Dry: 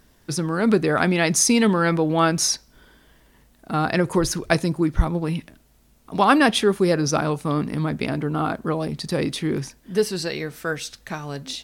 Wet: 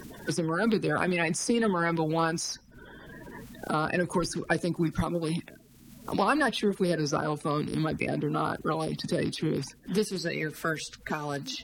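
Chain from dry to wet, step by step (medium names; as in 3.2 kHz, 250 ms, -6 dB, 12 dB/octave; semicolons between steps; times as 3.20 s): coarse spectral quantiser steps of 30 dB; three bands compressed up and down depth 70%; trim -6.5 dB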